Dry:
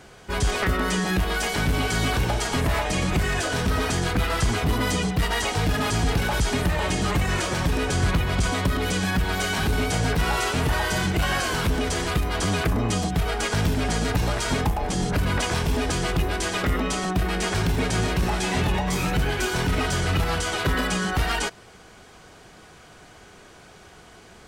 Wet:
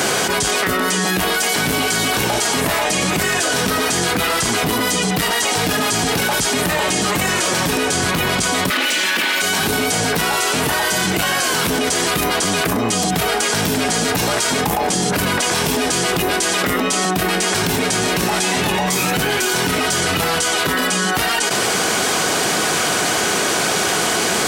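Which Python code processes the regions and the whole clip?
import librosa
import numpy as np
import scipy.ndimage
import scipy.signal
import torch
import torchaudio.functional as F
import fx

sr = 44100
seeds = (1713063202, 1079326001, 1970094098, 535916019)

y = fx.chain(x, sr, fx.lower_of_two(delay_ms=3.4),
    fx.highpass(hz=210.0, slope=24),
    fx.peak_eq(hz=2400.0, db=12.0, octaves=1.6), at=(8.7, 9.42))
y = scipy.signal.sosfilt(scipy.signal.butter(2, 200.0, 'highpass', fs=sr, output='sos'), y)
y = fx.high_shelf(y, sr, hz=5000.0, db=9.5)
y = fx.env_flatten(y, sr, amount_pct=100)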